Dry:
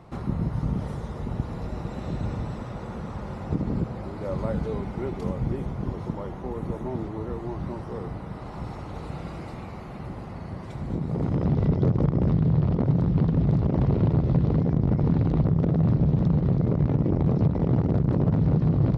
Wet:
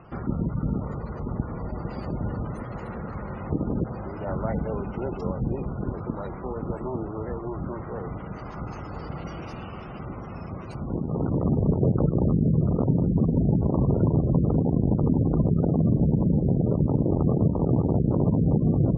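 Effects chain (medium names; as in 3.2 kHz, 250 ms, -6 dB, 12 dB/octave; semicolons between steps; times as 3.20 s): formant shift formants +3 st; treble shelf 3.3 kHz +9.5 dB; spectral gate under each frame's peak -25 dB strong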